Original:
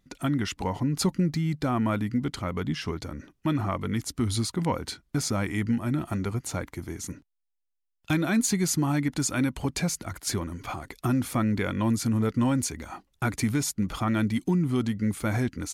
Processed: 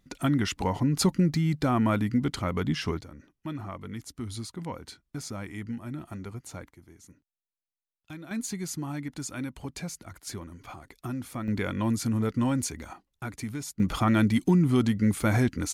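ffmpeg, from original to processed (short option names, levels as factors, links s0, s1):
-af "asetnsamples=n=441:p=0,asendcmd='3.01 volume volume -9.5dB;6.71 volume volume -17dB;8.31 volume volume -9dB;11.48 volume volume -2dB;12.93 volume volume -9dB;13.8 volume volume 3dB',volume=1.19"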